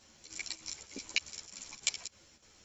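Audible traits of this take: chopped level 3.3 Hz, depth 60%, duty 80%; a shimmering, thickened sound

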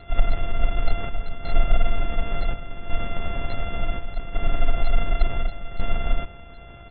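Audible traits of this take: a buzz of ramps at a fixed pitch in blocks of 64 samples; chopped level 0.69 Hz, depth 60%, duty 75%; a quantiser's noise floor 12-bit, dither triangular; AAC

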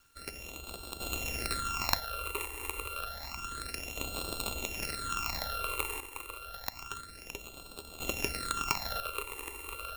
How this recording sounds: a buzz of ramps at a fixed pitch in blocks of 32 samples; phasing stages 8, 0.29 Hz, lowest notch 190–1900 Hz; a quantiser's noise floor 10-bit, dither none; random-step tremolo 1 Hz, depth 75%

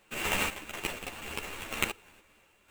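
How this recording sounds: a buzz of ramps at a fixed pitch in blocks of 16 samples; random-step tremolo 4.1 Hz, depth 70%; aliases and images of a low sample rate 5200 Hz, jitter 20%; a shimmering, thickened sound

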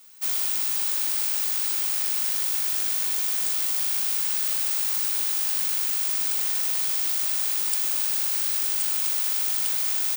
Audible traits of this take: noise floor -25 dBFS; spectral tilt +1.5 dB/oct

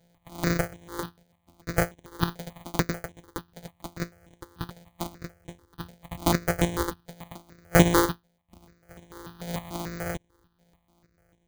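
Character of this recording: a buzz of ramps at a fixed pitch in blocks of 256 samples; chopped level 3.4 Hz, depth 60%, duty 60%; aliases and images of a low sample rate 2700 Hz, jitter 0%; notches that jump at a steady rate 6.8 Hz 310–4700 Hz

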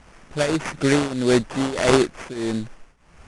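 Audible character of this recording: a quantiser's noise floor 10-bit, dither triangular; tremolo triangle 1.6 Hz, depth 90%; aliases and images of a low sample rate 4000 Hz, jitter 20%; AAC

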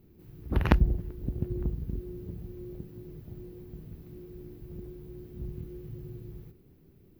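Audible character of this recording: noise floor -59 dBFS; spectral tilt -6.5 dB/oct

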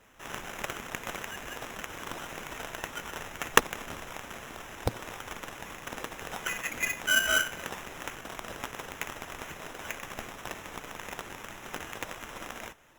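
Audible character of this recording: aliases and images of a low sample rate 4500 Hz, jitter 0%; Opus

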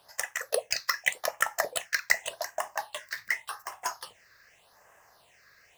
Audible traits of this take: phasing stages 6, 0.86 Hz, lowest notch 790–4100 Hz

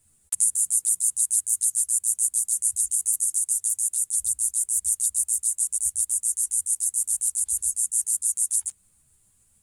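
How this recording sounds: tremolo saw up 7.1 Hz, depth 35%; a quantiser's noise floor 12-bit, dither none; a shimmering, thickened sound

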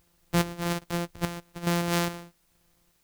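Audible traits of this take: a buzz of ramps at a fixed pitch in blocks of 256 samples; chopped level 1.2 Hz, depth 60%, duty 50%; a quantiser's noise floor 12-bit, dither triangular

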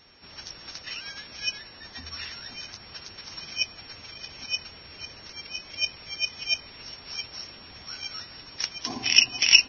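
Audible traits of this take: a buzz of ramps at a fixed pitch in blocks of 8 samples; Vorbis

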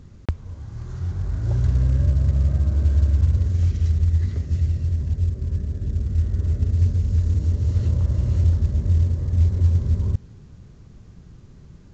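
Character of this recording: a quantiser's noise floor 10-bit, dither none; µ-law

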